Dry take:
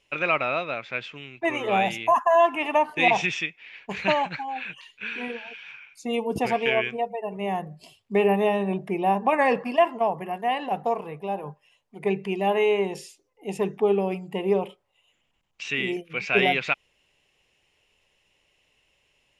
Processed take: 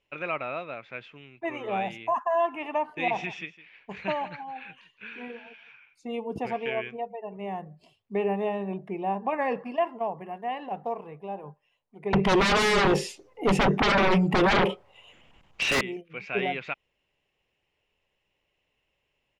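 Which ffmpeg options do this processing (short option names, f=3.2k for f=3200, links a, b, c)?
-filter_complex "[0:a]asplit=3[a][b][c];[a]afade=t=out:st=3.12:d=0.02[d];[b]aecho=1:1:159:0.15,afade=t=in:st=3.12:d=0.02,afade=t=out:st=5.7:d=0.02[e];[c]afade=t=in:st=5.7:d=0.02[f];[d][e][f]amix=inputs=3:normalize=0,asettb=1/sr,asplit=3[g][h][i];[g]atrim=end=12.134[j];[h]atrim=start=12.13:end=15.81,asetpts=PTS-STARTPTS,afade=t=in:d=0.004:c=qsin,afade=t=out:st=3.676:d=0.004:c=qsin,aeval=exprs='0.299*sin(PI/2*8.91*val(0)/0.299)':c=same[k];[i]atrim=start=15.806[l];[j][k]acrossfade=d=0.004:c1=hsin:c2=qsin[m];[m][l]acrossfade=d=0.004:c1=qsin:c2=hsin,aemphasis=mode=reproduction:type=75kf,volume=-6dB"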